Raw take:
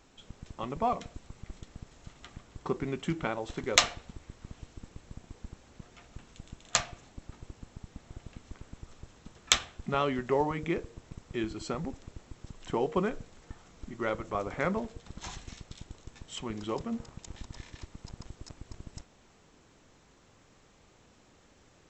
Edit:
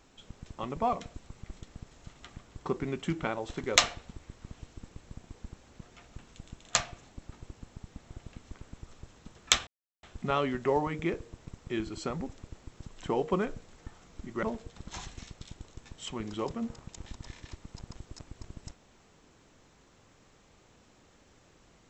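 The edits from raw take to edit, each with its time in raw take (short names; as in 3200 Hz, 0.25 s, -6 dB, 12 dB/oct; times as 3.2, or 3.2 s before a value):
9.67 insert silence 0.36 s
14.07–14.73 cut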